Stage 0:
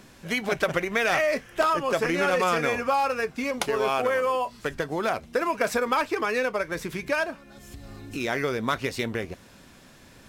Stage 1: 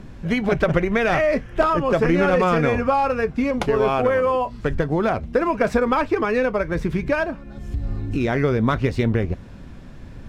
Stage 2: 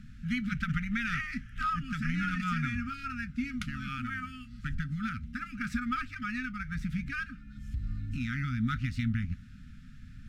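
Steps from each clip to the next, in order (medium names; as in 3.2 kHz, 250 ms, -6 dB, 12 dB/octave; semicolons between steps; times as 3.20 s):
RIAA curve playback; trim +3.5 dB
brick-wall FIR band-stop 270–1200 Hz; trim -9 dB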